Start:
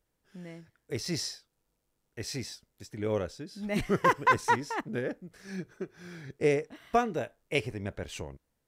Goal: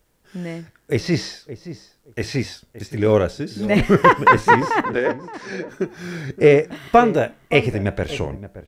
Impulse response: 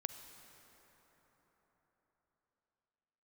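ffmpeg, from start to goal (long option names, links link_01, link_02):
-filter_complex "[0:a]asettb=1/sr,asplit=3[link_01][link_02][link_03];[link_01]atrim=end=4.864[link_04];[link_02]atrim=start=4.86:end=5.69,asetpts=PTS-STARTPTS,afade=type=in:duration=0.004:curve=qsin,afade=type=out:start_time=0.826:duration=0.004:curve=qsin,highpass=350,lowpass=5400[link_05];[link_03]atrim=start=5.686[link_06];[link_04][link_05]acrossfade=duration=0.004:curve1=hsin:curve2=qsin[link_07];[link_07][link_06]acrossfade=duration=0.004:curve1=qsin:curve2=hsin,asplit=2[link_08][link_09];[link_09]asoftclip=type=tanh:threshold=-22.5dB,volume=-4dB[link_10];[link_08][link_10]amix=inputs=2:normalize=0,flanger=delay=4.5:depth=3.7:regen=-87:speed=0.45:shape=triangular,asplit=2[link_11][link_12];[link_12]adelay=571,lowpass=frequency=1000:poles=1,volume=-13.5dB,asplit=2[link_13][link_14];[link_14]adelay=571,lowpass=frequency=1000:poles=1,volume=0.18[link_15];[link_13][link_15]amix=inputs=2:normalize=0[link_16];[link_11][link_16]amix=inputs=2:normalize=0,acrossover=split=3600[link_17][link_18];[link_18]acompressor=threshold=-56dB:ratio=4:attack=1:release=60[link_19];[link_17][link_19]amix=inputs=2:normalize=0,alimiter=level_in=16dB:limit=-1dB:release=50:level=0:latency=1,volume=-1dB"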